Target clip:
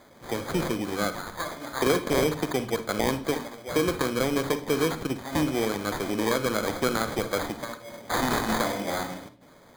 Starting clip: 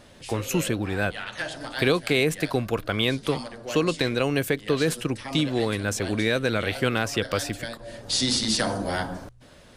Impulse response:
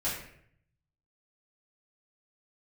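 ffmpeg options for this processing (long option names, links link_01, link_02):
-filter_complex "[0:a]highpass=180,acrusher=samples=16:mix=1:aa=0.000001,asplit=2[link_01][link_02];[1:a]atrim=start_sample=2205,asetrate=74970,aresample=44100,adelay=39[link_03];[link_02][link_03]afir=irnorm=-1:irlink=0,volume=-12.5dB[link_04];[link_01][link_04]amix=inputs=2:normalize=0,volume=-1.5dB"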